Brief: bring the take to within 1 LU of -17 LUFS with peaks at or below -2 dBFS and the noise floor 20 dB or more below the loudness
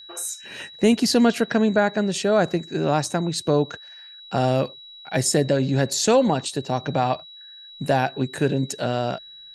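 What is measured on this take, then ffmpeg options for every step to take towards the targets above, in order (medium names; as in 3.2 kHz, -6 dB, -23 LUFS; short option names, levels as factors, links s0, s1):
steady tone 3.9 kHz; tone level -41 dBFS; loudness -22.5 LUFS; peak level -6.5 dBFS; loudness target -17.0 LUFS
-> -af "bandreject=f=3900:w=30"
-af "volume=1.88,alimiter=limit=0.794:level=0:latency=1"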